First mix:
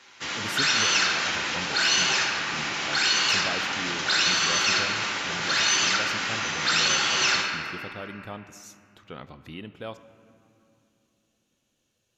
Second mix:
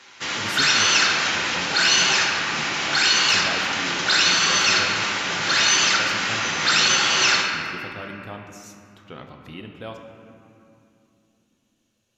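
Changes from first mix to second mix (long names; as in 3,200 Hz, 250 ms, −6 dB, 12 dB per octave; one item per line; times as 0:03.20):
speech: send +10.0 dB
background +4.5 dB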